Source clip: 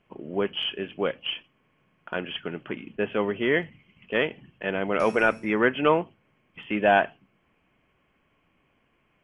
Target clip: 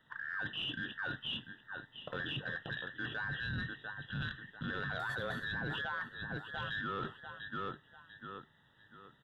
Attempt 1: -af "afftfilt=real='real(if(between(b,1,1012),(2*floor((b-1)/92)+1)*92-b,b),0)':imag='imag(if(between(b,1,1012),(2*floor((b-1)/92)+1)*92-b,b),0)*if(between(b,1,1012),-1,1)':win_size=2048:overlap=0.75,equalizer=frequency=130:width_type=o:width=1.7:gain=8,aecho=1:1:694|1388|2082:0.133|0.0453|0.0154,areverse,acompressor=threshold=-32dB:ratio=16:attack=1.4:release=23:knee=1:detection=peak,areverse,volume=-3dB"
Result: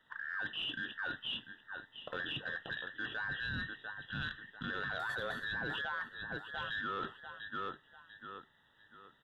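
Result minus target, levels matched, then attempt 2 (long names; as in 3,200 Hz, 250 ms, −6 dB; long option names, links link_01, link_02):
125 Hz band −6.0 dB
-af "afftfilt=real='real(if(between(b,1,1012),(2*floor((b-1)/92)+1)*92-b,b),0)':imag='imag(if(between(b,1,1012),(2*floor((b-1)/92)+1)*92-b,b),0)*if(between(b,1,1012),-1,1)':win_size=2048:overlap=0.75,equalizer=frequency=130:width_type=o:width=1.7:gain=18,aecho=1:1:694|1388|2082:0.133|0.0453|0.0154,areverse,acompressor=threshold=-32dB:ratio=16:attack=1.4:release=23:knee=1:detection=peak,areverse,volume=-3dB"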